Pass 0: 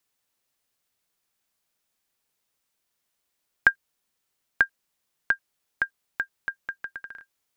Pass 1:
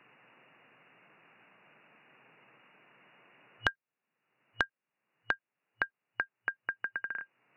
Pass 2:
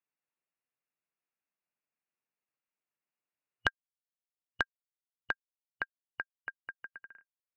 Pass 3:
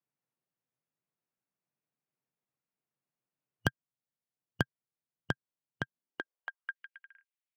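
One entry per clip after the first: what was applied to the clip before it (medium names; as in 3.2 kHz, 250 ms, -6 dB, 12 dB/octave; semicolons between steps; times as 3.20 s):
FFT band-pass 110–2900 Hz; three bands compressed up and down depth 100%; trim -5 dB
upward expansion 2.5:1, over -50 dBFS
tracing distortion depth 0.36 ms; tilt shelf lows +6 dB, about 1.4 kHz; high-pass sweep 130 Hz -> 2.3 kHz, 5.89–6.83 s; trim -2 dB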